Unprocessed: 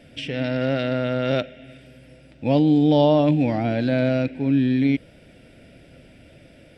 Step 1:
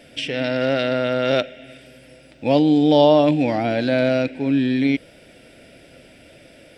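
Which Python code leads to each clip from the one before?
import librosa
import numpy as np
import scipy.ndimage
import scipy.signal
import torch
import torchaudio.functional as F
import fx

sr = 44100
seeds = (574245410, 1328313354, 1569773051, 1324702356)

y = fx.bass_treble(x, sr, bass_db=-9, treble_db=4)
y = y * librosa.db_to_amplitude(4.5)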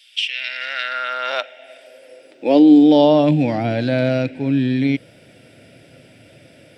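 y = fx.filter_sweep_highpass(x, sr, from_hz=3500.0, to_hz=110.0, start_s=0.01, end_s=3.71, q=2.6)
y = y * librosa.db_to_amplitude(-1.0)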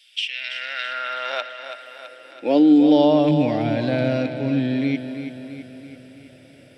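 y = fx.echo_feedback(x, sr, ms=330, feedback_pct=57, wet_db=-9.5)
y = y * librosa.db_to_amplitude(-4.0)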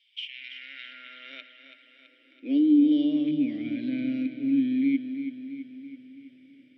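y = fx.vowel_filter(x, sr, vowel='i')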